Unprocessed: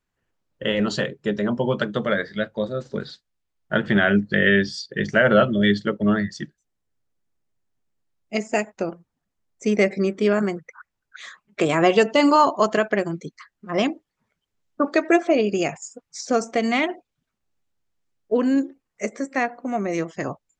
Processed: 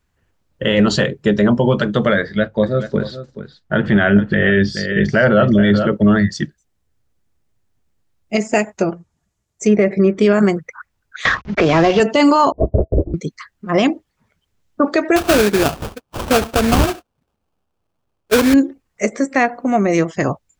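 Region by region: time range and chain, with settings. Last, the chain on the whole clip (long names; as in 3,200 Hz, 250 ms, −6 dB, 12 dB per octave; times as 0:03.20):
0:02.20–0:05.93: high-shelf EQ 3,600 Hz −8.5 dB + single-tap delay 429 ms −13 dB
0:08.69–0:10.19: treble cut that deepens with the level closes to 2,000 Hz, closed at −17.5 dBFS + parametric band 7,000 Hz +7.5 dB 0.64 octaves + notch comb filter 260 Hz
0:11.25–0:12.00: variable-slope delta modulation 32 kbit/s + multiband upward and downward compressor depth 100%
0:12.52–0:13.14: inverse Chebyshev low-pass filter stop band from 1,900 Hz, stop band 60 dB + linear-prediction vocoder at 8 kHz whisper + expander for the loud parts 2.5 to 1, over −34 dBFS
0:15.16–0:18.54: low-shelf EQ 180 Hz −9.5 dB + sample-rate reduction 2,000 Hz, jitter 20%
whole clip: parametric band 66 Hz +9.5 dB 1.6 octaves; brickwall limiter −13 dBFS; level +9 dB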